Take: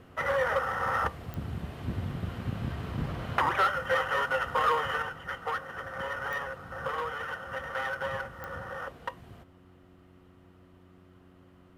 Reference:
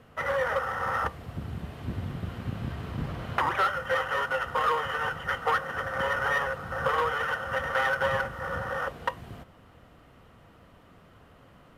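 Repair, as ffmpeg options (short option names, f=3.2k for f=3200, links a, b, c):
-af "adeclick=t=4,bandreject=f=91:t=h:w=4,bandreject=f=182:t=h:w=4,bandreject=f=273:t=h:w=4,bandreject=f=364:t=h:w=4,asetnsamples=n=441:p=0,asendcmd='5.02 volume volume 7dB',volume=0dB"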